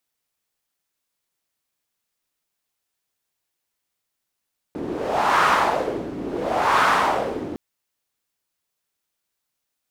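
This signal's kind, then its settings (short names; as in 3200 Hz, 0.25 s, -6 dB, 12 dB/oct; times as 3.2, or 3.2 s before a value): wind-like swept noise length 2.81 s, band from 300 Hz, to 1200 Hz, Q 2.7, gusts 2, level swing 13 dB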